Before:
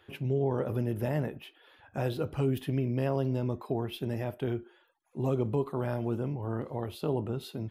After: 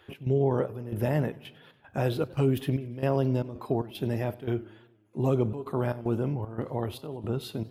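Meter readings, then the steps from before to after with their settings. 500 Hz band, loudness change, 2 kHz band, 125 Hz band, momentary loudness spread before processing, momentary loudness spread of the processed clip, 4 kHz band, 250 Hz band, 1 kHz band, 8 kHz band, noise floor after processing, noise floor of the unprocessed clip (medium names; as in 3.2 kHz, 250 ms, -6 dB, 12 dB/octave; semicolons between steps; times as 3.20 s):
+3.0 dB, +2.5 dB, +3.0 dB, +2.5 dB, 7 LU, 8 LU, +2.0 dB, +2.5 dB, +3.0 dB, no reading, -60 dBFS, -65 dBFS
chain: trance gate "x.xxx..xxx.xx.xx" 114 bpm -12 dB; modulated delay 97 ms, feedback 60%, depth 169 cents, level -21.5 dB; trim +4 dB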